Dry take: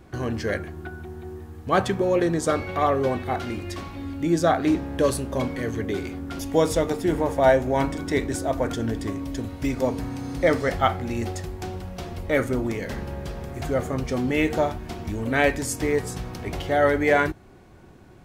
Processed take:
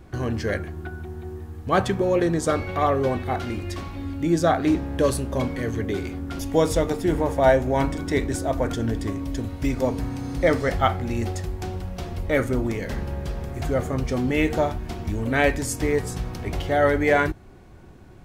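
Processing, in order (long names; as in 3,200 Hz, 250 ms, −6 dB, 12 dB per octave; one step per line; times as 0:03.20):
low-shelf EQ 84 Hz +8 dB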